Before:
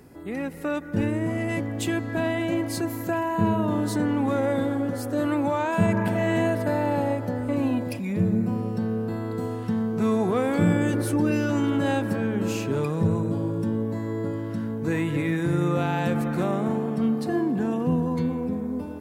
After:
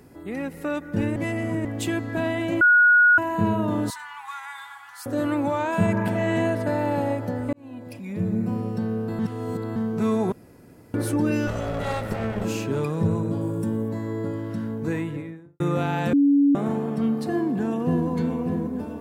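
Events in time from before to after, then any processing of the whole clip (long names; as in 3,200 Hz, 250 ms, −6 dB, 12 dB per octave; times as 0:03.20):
0:01.16–0:01.65: reverse
0:02.61–0:03.18: beep over 1,450 Hz −12 dBFS
0:03.90–0:05.06: elliptic high-pass filter 910 Hz
0:06.10–0:06.79: Bessel low-pass filter 11,000 Hz
0:07.53–0:08.53: fade in
0:09.19–0:09.76: reverse
0:10.32–0:10.94: fill with room tone
0:11.47–0:12.45: lower of the sound and its delayed copy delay 1.5 ms
0:13.41–0:13.89: high shelf with overshoot 6,400 Hz +7 dB, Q 1.5
0:14.73–0:15.60: fade out and dull
0:16.13–0:16.55: beep over 283 Hz −14 dBFS
0:17.28–0:18.08: delay throw 590 ms, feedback 55%, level −7.5 dB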